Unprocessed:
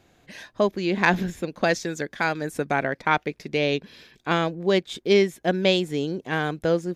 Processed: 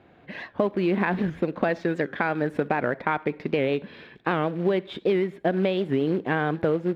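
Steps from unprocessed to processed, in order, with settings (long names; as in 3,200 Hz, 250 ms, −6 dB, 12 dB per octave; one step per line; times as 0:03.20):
camcorder AGC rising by 5.2 dB per second
in parallel at +2.5 dB: brickwall limiter −16 dBFS, peak gain reduction 10.5 dB
on the sum: downward compressor 8 to 1, threshold −17 dBFS, peak gain reduction 8.5 dB
on a send at −20.5 dB: convolution reverb RT60 0.50 s, pre-delay 43 ms
on the sum: floating-point word with a short mantissa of 2 bits
high-pass filter 150 Hz 6 dB per octave
high-frequency loss of the air 480 metres
wow of a warped record 78 rpm, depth 160 cents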